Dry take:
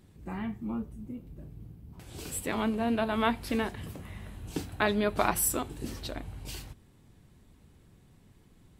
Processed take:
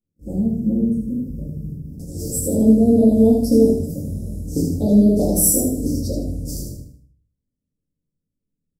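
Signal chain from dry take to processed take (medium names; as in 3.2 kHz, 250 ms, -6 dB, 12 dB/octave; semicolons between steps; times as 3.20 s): gate -48 dBFS, range -39 dB; Chebyshev band-stop 570–5300 Hz, order 4; feedback delay 78 ms, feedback 37%, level -5 dB; simulated room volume 180 m³, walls furnished, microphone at 2 m; trim +9 dB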